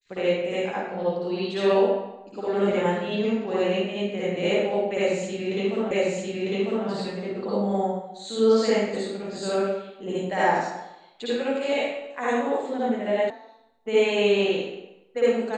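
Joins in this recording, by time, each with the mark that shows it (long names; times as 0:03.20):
0:05.91: the same again, the last 0.95 s
0:13.30: cut off before it has died away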